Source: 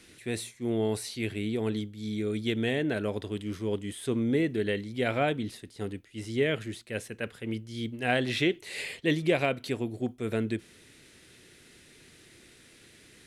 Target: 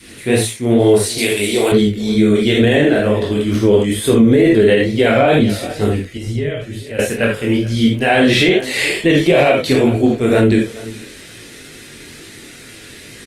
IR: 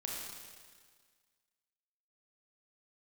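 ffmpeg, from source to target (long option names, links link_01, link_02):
-filter_complex "[0:a]asettb=1/sr,asplit=3[link_01][link_02][link_03];[link_01]atrim=end=2.874[link_04];[link_02]atrim=start=2.87:end=3.46,asetpts=PTS-STARTPTS,afade=type=in:duration=0.004:curve=qsin,afade=type=out:start_time=0.586:duration=0.004:curve=qsin,acompressor=threshold=-31dB:ratio=6[link_05];[link_03]atrim=start=3.456[link_06];[link_04][link_05]acrossfade=duration=0.004:curve1=hsin:curve2=qsin[link_07];[link_07][link_06]acrossfade=duration=0.004:curve1=qsin:curve2=hsin,adynamicequalizer=threshold=0.00891:dfrequency=580:dqfactor=1.4:tfrequency=580:tqfactor=1.4:attack=5:release=100:ratio=0.375:range=2:mode=boostabove:tftype=bell,aecho=1:1:422:0.0891[link_08];[1:a]atrim=start_sample=2205,afade=type=out:start_time=0.13:duration=0.01,atrim=end_sample=6174[link_09];[link_08][link_09]afir=irnorm=-1:irlink=0,flanger=delay=18:depth=5.9:speed=2.2,asettb=1/sr,asplit=3[link_10][link_11][link_12];[link_10]atrim=end=1.184[link_13];[link_11]atrim=start=1.18:end=1.72,asetpts=PTS-STARTPTS,afade=type=in:duration=0.004:curve=qsin,afade=type=out:start_time=0.536:duration=0.004:curve=qsin,bass=frequency=250:gain=-15,treble=frequency=4000:gain=13[link_14];[link_12]atrim=start=1.716[link_15];[link_13][link_14]acrossfade=duration=0.004:curve1=hsin:curve2=qsin[link_16];[link_16][link_15]acrossfade=duration=0.004:curve1=qsin:curve2=hsin,asettb=1/sr,asplit=3[link_17][link_18][link_19];[link_17]atrim=end=6.174[link_20];[link_18]atrim=start=6.17:end=6.99,asetpts=PTS-STARTPTS,afade=type=in:duration=0.004:curve=qsin,afade=type=out:start_time=0.816:duration=0.004:curve=qsin,acrossover=split=120[link_21][link_22];[link_22]acompressor=threshold=-58dB:ratio=2[link_23];[link_21][link_23]amix=inputs=2:normalize=0[link_24];[link_19]atrim=start=6.986[link_25];[link_20][link_24]acrossfade=duration=0.004:curve1=hsin:curve2=qsin[link_26];[link_26][link_25]acrossfade=duration=0.004:curve1=qsin:curve2=hsin,alimiter=level_in=25dB:limit=-1dB:release=50:level=0:latency=1,volume=-2dB" -ar 48000 -c:a libopus -b:a 24k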